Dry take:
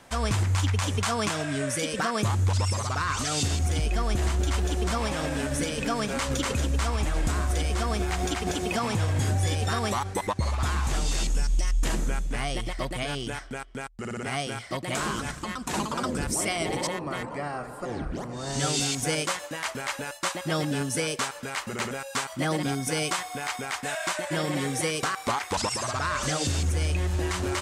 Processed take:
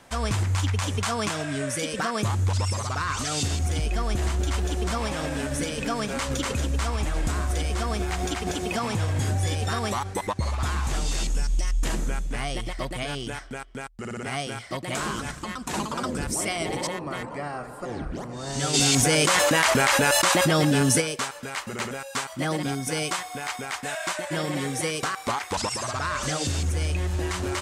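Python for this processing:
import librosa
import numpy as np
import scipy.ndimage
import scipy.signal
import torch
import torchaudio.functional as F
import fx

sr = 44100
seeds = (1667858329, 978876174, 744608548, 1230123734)

y = fx.env_flatten(x, sr, amount_pct=100, at=(18.73, 21.0), fade=0.02)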